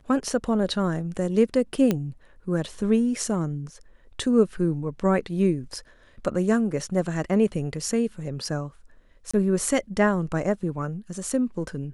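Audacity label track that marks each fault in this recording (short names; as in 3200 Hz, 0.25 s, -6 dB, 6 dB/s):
1.910000	1.910000	pop -10 dBFS
9.310000	9.340000	gap 25 ms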